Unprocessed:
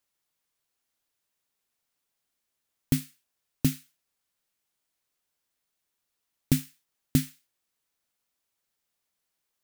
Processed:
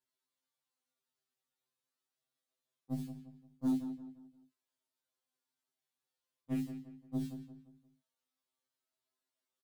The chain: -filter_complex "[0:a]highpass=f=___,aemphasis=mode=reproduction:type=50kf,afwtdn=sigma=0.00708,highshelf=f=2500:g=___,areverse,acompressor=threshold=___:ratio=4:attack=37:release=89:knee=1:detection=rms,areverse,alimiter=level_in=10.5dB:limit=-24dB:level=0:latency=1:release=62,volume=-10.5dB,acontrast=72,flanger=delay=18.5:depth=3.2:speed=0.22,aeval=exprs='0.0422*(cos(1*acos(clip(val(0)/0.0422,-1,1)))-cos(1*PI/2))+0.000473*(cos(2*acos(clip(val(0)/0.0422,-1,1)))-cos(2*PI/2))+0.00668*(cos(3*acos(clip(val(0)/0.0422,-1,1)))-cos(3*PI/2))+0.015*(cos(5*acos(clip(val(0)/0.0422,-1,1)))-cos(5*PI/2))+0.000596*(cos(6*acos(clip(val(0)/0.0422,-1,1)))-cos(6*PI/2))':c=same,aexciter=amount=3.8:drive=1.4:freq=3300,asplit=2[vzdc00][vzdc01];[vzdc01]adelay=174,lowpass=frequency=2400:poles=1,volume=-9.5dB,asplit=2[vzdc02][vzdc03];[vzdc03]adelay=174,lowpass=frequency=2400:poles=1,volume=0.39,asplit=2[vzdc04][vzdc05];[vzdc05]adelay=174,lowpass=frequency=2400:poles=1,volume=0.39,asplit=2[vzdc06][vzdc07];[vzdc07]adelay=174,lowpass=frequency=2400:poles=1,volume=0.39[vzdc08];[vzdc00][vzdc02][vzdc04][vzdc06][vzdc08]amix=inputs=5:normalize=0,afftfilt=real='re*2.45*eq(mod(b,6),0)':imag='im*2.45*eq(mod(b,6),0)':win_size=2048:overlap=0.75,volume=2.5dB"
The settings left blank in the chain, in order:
140, -8, -38dB